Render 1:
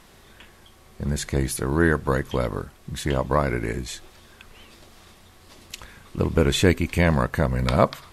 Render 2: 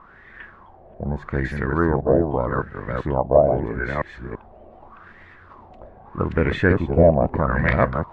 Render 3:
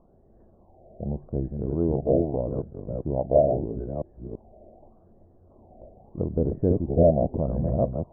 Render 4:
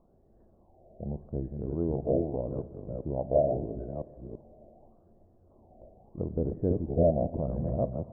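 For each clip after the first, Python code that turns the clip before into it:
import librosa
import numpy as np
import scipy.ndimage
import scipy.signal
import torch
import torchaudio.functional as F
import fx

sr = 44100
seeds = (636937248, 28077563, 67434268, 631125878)

y1 = fx.reverse_delay(x, sr, ms=335, wet_db=-3.0)
y1 = fx.dynamic_eq(y1, sr, hz=1400.0, q=0.99, threshold_db=-36.0, ratio=4.0, max_db=-5)
y1 = fx.filter_lfo_lowpass(y1, sr, shape='sine', hz=0.81, low_hz=640.0, high_hz=1900.0, q=6.6)
y1 = F.gain(torch.from_numpy(y1), -1.0).numpy()
y2 = scipy.signal.sosfilt(scipy.signal.cheby1(4, 1.0, 680.0, 'lowpass', fs=sr, output='sos'), y1)
y2 = F.gain(torch.from_numpy(y2), -3.5).numpy()
y3 = fx.rev_schroeder(y2, sr, rt60_s=2.5, comb_ms=27, drr_db=15.0)
y3 = F.gain(torch.from_numpy(y3), -5.5).numpy()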